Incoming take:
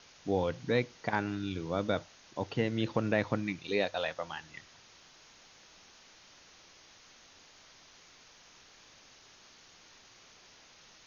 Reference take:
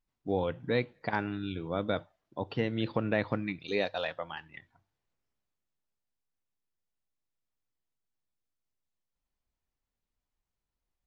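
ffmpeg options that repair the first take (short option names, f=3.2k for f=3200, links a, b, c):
-af "afwtdn=0.0022,asetnsamples=n=441:p=0,asendcmd='4.94 volume volume -4.5dB',volume=0dB"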